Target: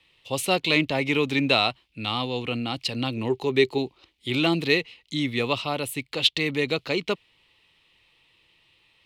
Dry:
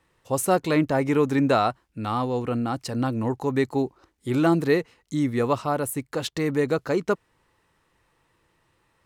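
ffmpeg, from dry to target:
-filter_complex "[0:a]asettb=1/sr,asplit=3[a][b][c];[a]atrim=end=3.174[d];[b]atrim=start=3.17:end=3.78,asetpts=PTS-STARTPTS,afade=t=in:d=0.004:c=qsin,afade=t=out:st=0.606:d=0.004:c=qsin,equalizer=f=390:w=6.8:g=11[e];[c]atrim=start=3.776[f];[d][e]acrossfade=d=0.004:c1=hsin:c2=qsin[g];[g][f]acrossfade=d=0.004:c1=qsin:c2=hsin,acrossover=split=230|3200[h][i][j];[i]aexciter=amount=13.6:drive=8.5:freq=2.5k[k];[h][k][j]amix=inputs=3:normalize=0,volume=-3.5dB"

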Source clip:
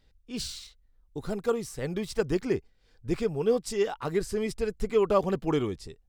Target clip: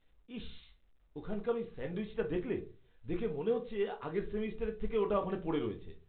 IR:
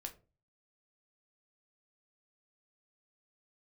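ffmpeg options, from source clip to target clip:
-filter_complex "[1:a]atrim=start_sample=2205[a];[0:a][a]afir=irnorm=-1:irlink=0,volume=-4dB" -ar 8000 -c:a pcm_mulaw

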